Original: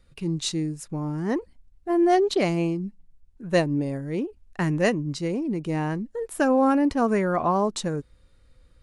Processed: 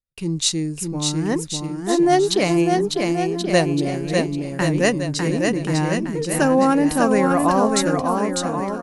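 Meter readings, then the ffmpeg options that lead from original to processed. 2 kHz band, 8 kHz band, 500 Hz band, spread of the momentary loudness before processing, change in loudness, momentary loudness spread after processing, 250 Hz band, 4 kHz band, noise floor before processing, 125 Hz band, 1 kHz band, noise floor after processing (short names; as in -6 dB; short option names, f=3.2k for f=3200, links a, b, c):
+7.0 dB, +13.0 dB, +5.5 dB, 11 LU, +5.0 dB, 7 LU, +5.5 dB, +10.0 dB, -58 dBFS, +5.5 dB, +5.5 dB, -32 dBFS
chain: -filter_complex "[0:a]agate=range=-38dB:threshold=-46dB:ratio=16:detection=peak,highshelf=f=3.9k:g=10,asplit=2[a][b];[b]aecho=0:1:600|1080|1464|1771|2017:0.631|0.398|0.251|0.158|0.1[c];[a][c]amix=inputs=2:normalize=0,volume=3dB"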